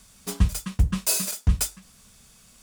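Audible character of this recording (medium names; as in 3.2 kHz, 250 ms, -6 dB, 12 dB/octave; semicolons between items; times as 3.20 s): noise floor -55 dBFS; spectral tilt -3.0 dB/octave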